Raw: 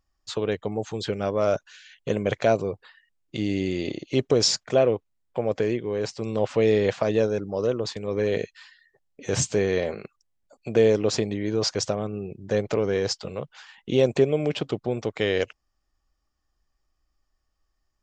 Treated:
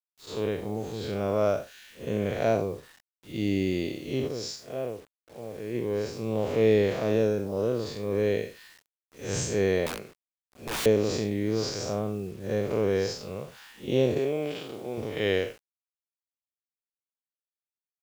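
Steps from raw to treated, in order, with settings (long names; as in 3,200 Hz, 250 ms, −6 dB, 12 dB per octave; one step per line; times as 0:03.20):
spectrum smeared in time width 141 ms
0:04.26–0:05.76: duck −10 dB, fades 0.34 s exponential
0:09.86–0:10.86: wrap-around overflow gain 26.5 dB
0:14.18–0:14.98: high-pass filter 420 Hz 6 dB per octave
bit reduction 9 bits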